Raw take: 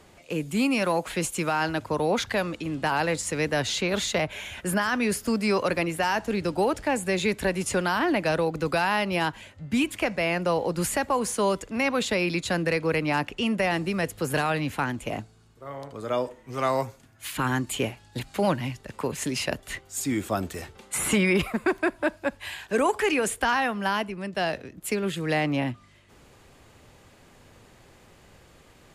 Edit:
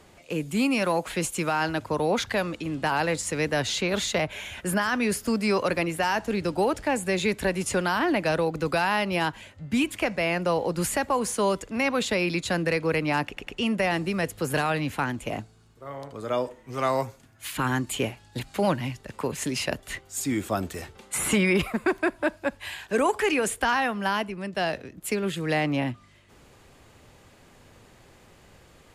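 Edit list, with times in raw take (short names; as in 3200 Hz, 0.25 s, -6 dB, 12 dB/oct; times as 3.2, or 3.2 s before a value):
13.27 stutter 0.10 s, 3 plays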